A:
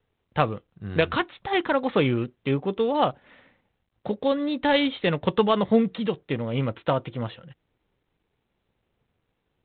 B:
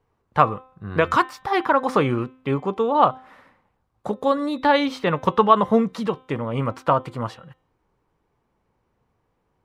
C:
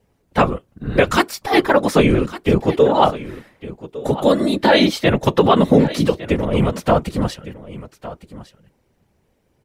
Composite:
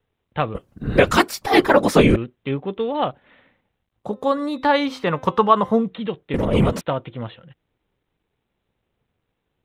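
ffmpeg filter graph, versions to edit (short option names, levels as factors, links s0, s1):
-filter_complex "[2:a]asplit=2[s0][s1];[0:a]asplit=4[s2][s3][s4][s5];[s2]atrim=end=0.552[s6];[s0]atrim=start=0.548:end=2.162[s7];[s3]atrim=start=2.158:end=4.2[s8];[1:a]atrim=start=3.96:end=5.93[s9];[s4]atrim=start=5.69:end=6.342[s10];[s1]atrim=start=6.338:end=6.812[s11];[s5]atrim=start=6.808[s12];[s6][s7]acrossfade=d=0.004:c1=hsin:c2=hsin[s13];[s13][s8]acrossfade=d=0.004:c1=hsin:c2=hsin[s14];[s14][s9]acrossfade=d=0.24:c1=tri:c2=tri[s15];[s15][s10]acrossfade=d=0.24:c1=tri:c2=tri[s16];[s16][s11]acrossfade=d=0.004:c1=hsin:c2=hsin[s17];[s17][s12]acrossfade=d=0.004:c1=hsin:c2=hsin"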